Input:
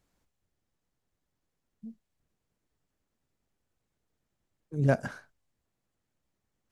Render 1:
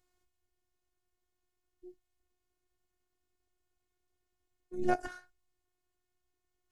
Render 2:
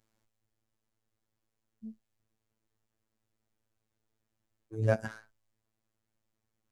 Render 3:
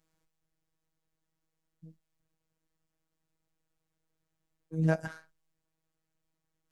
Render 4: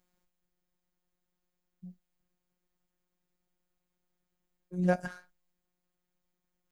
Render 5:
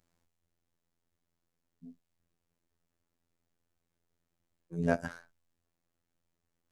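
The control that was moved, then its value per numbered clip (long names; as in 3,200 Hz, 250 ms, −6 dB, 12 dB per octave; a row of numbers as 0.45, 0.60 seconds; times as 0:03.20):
phases set to zero, frequency: 360, 110, 160, 180, 85 Hertz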